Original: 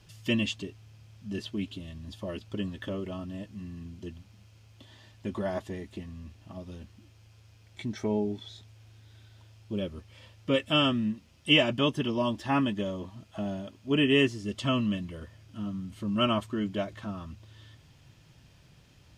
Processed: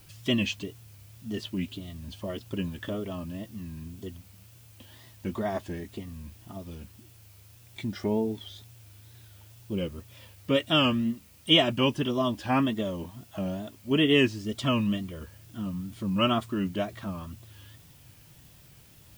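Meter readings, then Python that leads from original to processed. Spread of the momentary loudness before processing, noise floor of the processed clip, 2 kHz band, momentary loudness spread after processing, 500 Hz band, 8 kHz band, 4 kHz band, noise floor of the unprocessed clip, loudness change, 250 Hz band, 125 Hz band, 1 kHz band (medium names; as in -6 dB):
20 LU, -54 dBFS, 0.0 dB, 21 LU, +1.5 dB, +3.0 dB, +2.5 dB, -58 dBFS, +1.5 dB, +1.5 dB, +1.5 dB, +2.0 dB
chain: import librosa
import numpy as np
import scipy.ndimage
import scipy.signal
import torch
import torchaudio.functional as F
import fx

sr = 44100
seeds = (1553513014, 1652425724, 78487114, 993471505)

y = fx.wow_flutter(x, sr, seeds[0], rate_hz=2.1, depth_cents=130.0)
y = fx.dmg_noise_colour(y, sr, seeds[1], colour='blue', level_db=-60.0)
y = y * 10.0 ** (1.5 / 20.0)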